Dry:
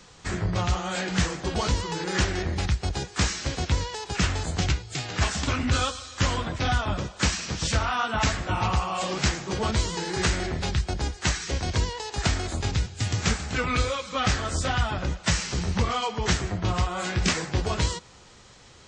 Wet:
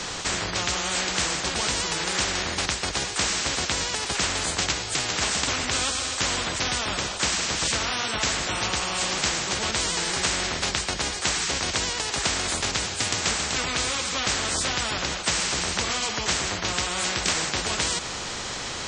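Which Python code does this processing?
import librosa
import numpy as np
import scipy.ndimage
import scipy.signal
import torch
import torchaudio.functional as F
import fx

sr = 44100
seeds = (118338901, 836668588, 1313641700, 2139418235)

y = fx.spectral_comp(x, sr, ratio=4.0)
y = F.gain(torch.from_numpy(y), 4.5).numpy()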